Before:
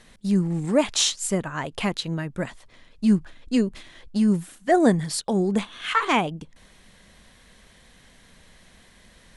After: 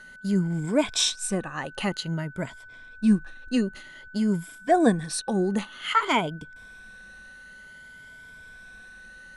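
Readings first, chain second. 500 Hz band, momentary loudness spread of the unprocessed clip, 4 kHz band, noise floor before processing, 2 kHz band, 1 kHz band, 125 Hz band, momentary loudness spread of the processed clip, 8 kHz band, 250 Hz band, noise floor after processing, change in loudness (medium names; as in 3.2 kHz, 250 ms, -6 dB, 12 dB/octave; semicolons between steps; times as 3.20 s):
-2.5 dB, 11 LU, -1.5 dB, -54 dBFS, -1.0 dB, -1.0 dB, -2.5 dB, 23 LU, -3.0 dB, -2.5 dB, -47 dBFS, -2.0 dB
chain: drifting ripple filter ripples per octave 1.7, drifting +0.53 Hz, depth 10 dB; whistle 1.5 kHz -41 dBFS; trim -3.5 dB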